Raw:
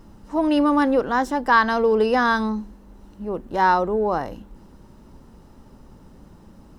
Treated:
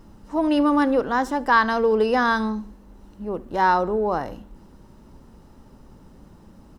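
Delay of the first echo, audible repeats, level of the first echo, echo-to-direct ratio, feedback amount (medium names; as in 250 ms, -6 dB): 72 ms, 2, -21.0 dB, -20.0 dB, 43%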